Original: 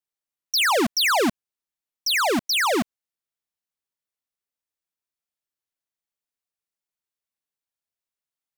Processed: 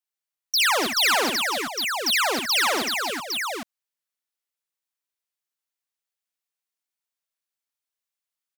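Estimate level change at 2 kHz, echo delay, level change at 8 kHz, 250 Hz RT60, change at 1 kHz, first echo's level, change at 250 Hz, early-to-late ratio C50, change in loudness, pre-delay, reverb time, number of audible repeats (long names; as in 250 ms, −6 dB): +1.5 dB, 62 ms, +2.5 dB, no reverb audible, 0.0 dB, −7.0 dB, −6.0 dB, no reverb audible, −1.0 dB, no reverb audible, no reverb audible, 5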